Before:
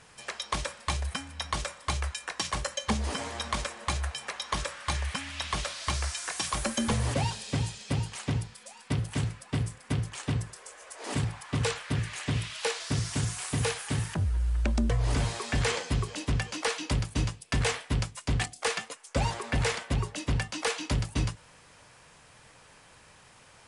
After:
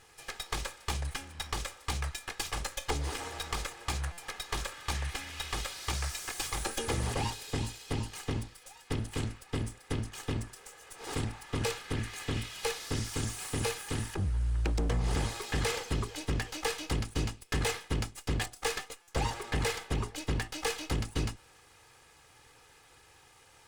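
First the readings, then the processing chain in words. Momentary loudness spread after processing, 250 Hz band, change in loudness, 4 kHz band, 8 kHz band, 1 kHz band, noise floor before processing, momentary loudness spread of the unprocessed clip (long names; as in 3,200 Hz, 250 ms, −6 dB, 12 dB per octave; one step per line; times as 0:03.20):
6 LU, −4.5 dB, −3.5 dB, −3.0 dB, −3.0 dB, −3.5 dB, −56 dBFS, 6 LU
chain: lower of the sound and its delayed copy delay 2.4 ms
buffer that repeats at 0:04.12/0:19.02, samples 256, times 9
level −2 dB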